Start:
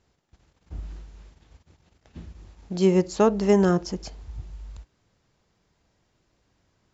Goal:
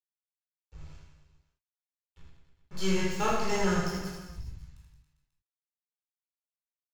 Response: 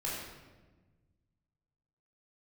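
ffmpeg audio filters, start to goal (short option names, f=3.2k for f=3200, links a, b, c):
-filter_complex "[0:a]aeval=exprs='sgn(val(0))*max(abs(val(0))-0.0178,0)':c=same,tiltshelf=f=690:g=-8[a];[1:a]atrim=start_sample=2205,atrim=end_sample=3969[b];[a][b]afir=irnorm=-1:irlink=0,asubboost=boost=11:cutoff=130,aecho=1:1:80|172|277.8|399.5|539.4:0.631|0.398|0.251|0.158|0.1,volume=-7.5dB"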